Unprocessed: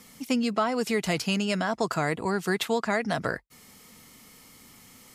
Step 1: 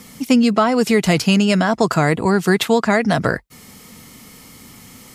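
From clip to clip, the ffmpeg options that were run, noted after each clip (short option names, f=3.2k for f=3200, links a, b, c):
-af "equalizer=f=110:w=0.36:g=5,volume=9dB"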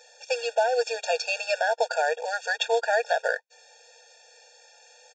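-af "aresample=16000,acrusher=bits=5:mode=log:mix=0:aa=0.000001,aresample=44100,afftfilt=real='re*eq(mod(floor(b*sr/1024/470),2),1)':imag='im*eq(mod(floor(b*sr/1024/470),2),1)':win_size=1024:overlap=0.75,volume=-4dB"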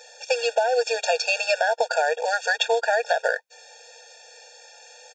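-af "acompressor=threshold=-24dB:ratio=6,volume=6.5dB"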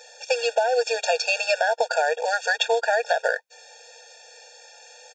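-af anull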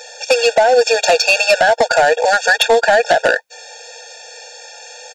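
-af "aeval=exprs='0.447*sin(PI/2*2*val(0)/0.447)':c=same,volume=2dB"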